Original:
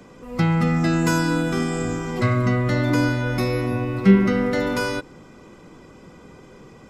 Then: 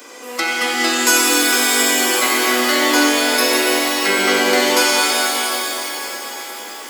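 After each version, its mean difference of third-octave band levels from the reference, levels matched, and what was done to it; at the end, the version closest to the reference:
17.5 dB: in parallel at 0 dB: downward compressor, threshold −29 dBFS, peak gain reduction 19 dB
on the sum: Butterworth high-pass 230 Hz 72 dB per octave
spectral tilt +4 dB per octave
reverb with rising layers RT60 3.1 s, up +7 semitones, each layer −2 dB, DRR −1.5 dB
level +2 dB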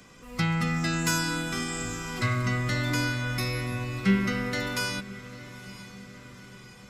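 7.0 dB: guitar amp tone stack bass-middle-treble 5-5-5
notch filter 910 Hz, Q 14
speech leveller within 4 dB 2 s
feedback delay with all-pass diffusion 923 ms, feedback 54%, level −16 dB
level +7.5 dB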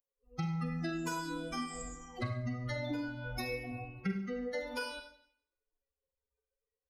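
9.0 dB: spectral dynamics exaggerated over time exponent 3
downward compressor 6 to 1, threshold −33 dBFS, peak gain reduction 21.5 dB
on a send: feedback echo with a band-pass in the loop 68 ms, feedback 64%, band-pass 1,700 Hz, level −23.5 dB
on the sum: four-comb reverb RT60 0.62 s, combs from 32 ms, DRR 5 dB
level −2 dB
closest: second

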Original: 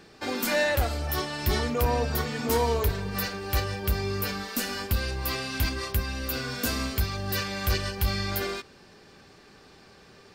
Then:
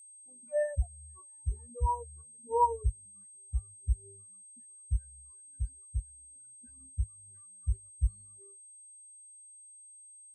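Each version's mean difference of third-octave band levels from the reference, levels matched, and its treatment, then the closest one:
31.0 dB: steady tone 8,400 Hz −29 dBFS
dynamic equaliser 970 Hz, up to +6 dB, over −47 dBFS, Q 4.1
every bin expanded away from the loudest bin 4 to 1
level −3 dB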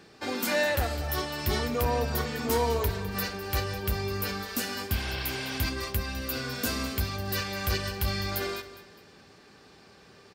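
1.5 dB: healed spectral selection 0:04.94–0:05.55, 420–5,800 Hz after
high-pass filter 58 Hz
repeating echo 205 ms, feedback 38%, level −15 dB
level −1.5 dB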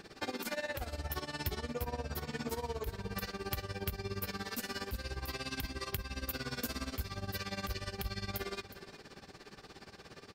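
4.5 dB: downward compressor 6 to 1, threshold −37 dBFS, peak gain reduction 16 dB
amplitude tremolo 17 Hz, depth 86%
single-tap delay 365 ms −15 dB
level +3.5 dB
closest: second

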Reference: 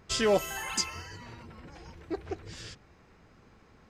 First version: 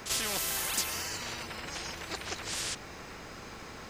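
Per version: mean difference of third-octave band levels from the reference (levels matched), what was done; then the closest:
13.5 dB: high-shelf EQ 3,700 Hz +10 dB
echo ahead of the sound 38 ms −14.5 dB
every bin compressed towards the loudest bin 4 to 1
level −6.5 dB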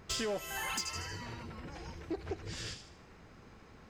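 7.5 dB: delay with a high-pass on its return 78 ms, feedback 43%, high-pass 2,500 Hz, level −7.5 dB
downward compressor 6 to 1, threshold −34 dBFS, peak gain reduction 13.5 dB
soft clipping −30.5 dBFS, distortion −17 dB
level +2.5 dB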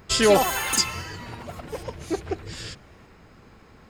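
2.5 dB: high-shelf EQ 11,000 Hz +7 dB
notch filter 6,000 Hz, Q 9.3
delay with pitch and tempo change per echo 147 ms, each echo +5 semitones, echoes 3, each echo −6 dB
level +7.5 dB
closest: third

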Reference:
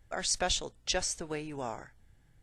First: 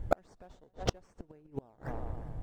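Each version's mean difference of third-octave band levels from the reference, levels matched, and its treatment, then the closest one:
15.5 dB: in parallel at −4 dB: sample-and-hold swept by an LFO 14×, swing 60% 3.5 Hz
on the sum: tilt shelving filter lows +9.5 dB, about 1,400 Hz
tape delay 123 ms, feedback 65%, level −20 dB, low-pass 4,900 Hz
gate with flip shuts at −20 dBFS, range −41 dB
level +8.5 dB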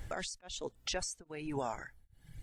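7.0 dB: reverb reduction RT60 1.1 s
downward compressor 2 to 1, threshold −55 dBFS, peak gain reduction 15.5 dB
brickwall limiter −42.5 dBFS, peak gain reduction 11.5 dB
tremolo along a rectified sine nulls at 1.2 Hz
level +17 dB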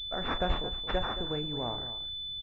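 10.5 dB: low-shelf EQ 180 Hz +9 dB
double-tracking delay 34 ms −10.5 dB
slap from a distant wall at 38 metres, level −12 dB
switching amplifier with a slow clock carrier 3,500 Hz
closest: second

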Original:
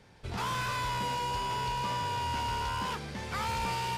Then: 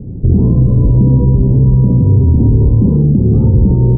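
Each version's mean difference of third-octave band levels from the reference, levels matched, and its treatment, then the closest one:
20.5 dB: inverse Chebyshev low-pass filter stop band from 1,900 Hz, stop band 80 dB
on a send: ambience of single reflections 30 ms −13 dB, 62 ms −4.5 dB
on the sum: boost into a limiter +36 dB
level −1.5 dB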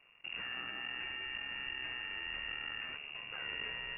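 13.5 dB: dynamic equaliser 1,100 Hz, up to −4 dB, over −46 dBFS, Q 0.73
half-wave rectification
voice inversion scrambler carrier 2,800 Hz
level −4.5 dB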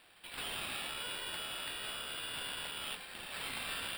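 8.0 dB: Butterworth high-pass 2,500 Hz 72 dB per octave
in parallel at +1.5 dB: downward compressor, threshold −57 dBFS, peak gain reduction 16.5 dB
on the sum: decimation without filtering 7×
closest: third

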